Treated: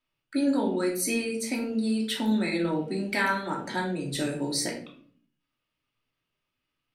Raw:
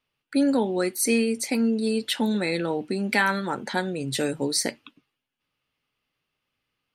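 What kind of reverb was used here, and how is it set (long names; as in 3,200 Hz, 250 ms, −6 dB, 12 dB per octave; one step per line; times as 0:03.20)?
rectangular room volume 550 cubic metres, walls furnished, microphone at 2.8 metres
level −7 dB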